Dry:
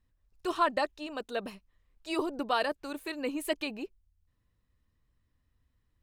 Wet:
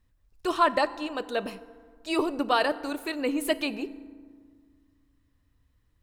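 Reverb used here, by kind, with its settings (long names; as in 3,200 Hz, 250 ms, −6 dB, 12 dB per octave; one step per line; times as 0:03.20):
feedback delay network reverb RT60 1.8 s, low-frequency decay 1.3×, high-frequency decay 0.5×, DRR 14 dB
level +5 dB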